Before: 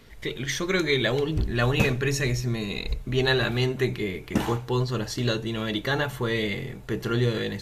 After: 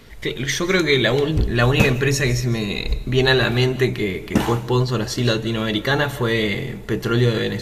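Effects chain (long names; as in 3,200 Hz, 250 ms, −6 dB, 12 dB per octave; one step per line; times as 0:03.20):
on a send: high-shelf EQ 5,600 Hz +9 dB + convolution reverb RT60 0.95 s, pre-delay 120 ms, DRR 17.5 dB
on the sum: level +6.5 dB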